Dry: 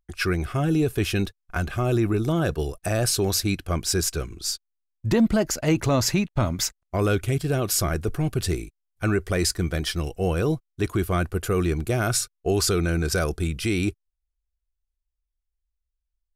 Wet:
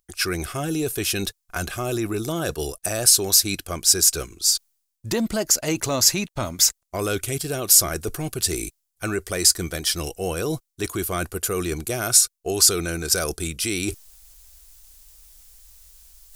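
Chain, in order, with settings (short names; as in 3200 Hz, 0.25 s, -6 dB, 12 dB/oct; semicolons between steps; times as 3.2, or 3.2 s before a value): tone controls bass -7 dB, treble +13 dB; reverse; upward compressor, threshold -20 dBFS; reverse; gain -1.5 dB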